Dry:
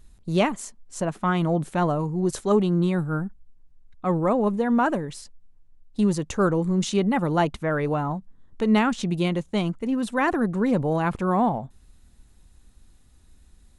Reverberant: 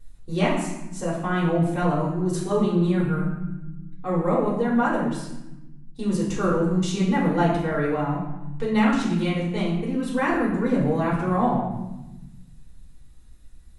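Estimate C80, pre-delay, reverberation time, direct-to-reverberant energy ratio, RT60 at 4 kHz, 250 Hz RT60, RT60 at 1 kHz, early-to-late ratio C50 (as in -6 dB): 5.5 dB, 3 ms, 1.0 s, -7.5 dB, 0.75 s, 1.7 s, 0.95 s, 2.5 dB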